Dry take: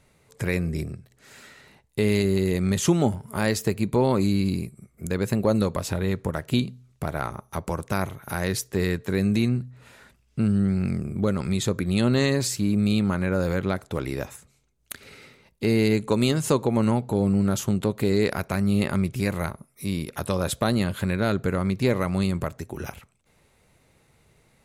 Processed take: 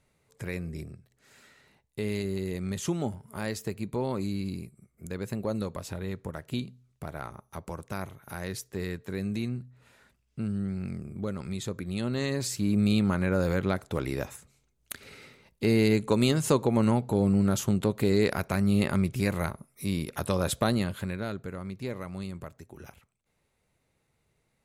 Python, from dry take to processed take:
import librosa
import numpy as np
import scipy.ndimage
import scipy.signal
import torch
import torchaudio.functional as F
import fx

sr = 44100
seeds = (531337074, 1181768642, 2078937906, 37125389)

y = fx.gain(x, sr, db=fx.line((12.13, -9.5), (12.79, -2.0), (20.63, -2.0), (21.46, -13.0)))